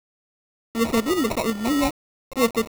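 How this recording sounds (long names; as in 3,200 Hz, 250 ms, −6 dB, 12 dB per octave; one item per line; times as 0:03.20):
aliases and images of a low sample rate 1,600 Hz, jitter 0%
tremolo saw up 2 Hz, depth 45%
a quantiser's noise floor 6 bits, dither none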